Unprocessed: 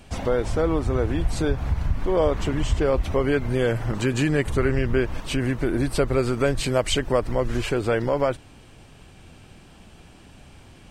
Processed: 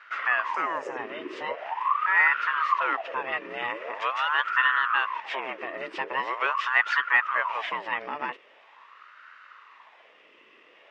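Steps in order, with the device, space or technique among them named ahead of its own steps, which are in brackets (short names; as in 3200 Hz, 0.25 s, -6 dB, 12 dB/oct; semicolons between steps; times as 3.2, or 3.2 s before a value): 0.54–0.97 resonant high shelf 5200 Hz +12 dB, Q 3; voice changer toy (ring modulator with a swept carrier 860 Hz, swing 65%, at 0.43 Hz; speaker cabinet 570–4500 Hz, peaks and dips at 760 Hz -8 dB, 1100 Hz +5 dB, 1900 Hz +9 dB, 2700 Hz +9 dB, 4200 Hz -8 dB); gain -3.5 dB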